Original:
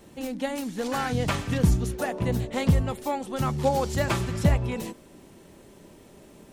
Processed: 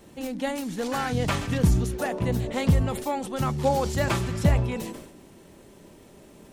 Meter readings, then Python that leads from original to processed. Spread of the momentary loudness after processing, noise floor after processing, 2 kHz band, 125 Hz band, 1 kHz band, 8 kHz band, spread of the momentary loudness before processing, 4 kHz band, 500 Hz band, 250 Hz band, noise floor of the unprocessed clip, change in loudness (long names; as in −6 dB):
7 LU, −51 dBFS, +0.5 dB, +1.0 dB, +0.5 dB, +1.0 dB, 7 LU, +0.5 dB, +0.5 dB, +0.5 dB, −51 dBFS, +0.5 dB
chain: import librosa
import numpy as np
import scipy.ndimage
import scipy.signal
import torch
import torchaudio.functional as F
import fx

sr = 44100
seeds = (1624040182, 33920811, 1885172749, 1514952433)

y = fx.sustainer(x, sr, db_per_s=67.0)